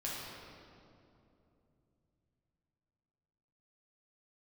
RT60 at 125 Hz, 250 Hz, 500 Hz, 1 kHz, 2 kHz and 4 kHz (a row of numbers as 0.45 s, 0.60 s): 4.6 s, 3.8 s, 3.2 s, 2.5 s, 1.9 s, 1.6 s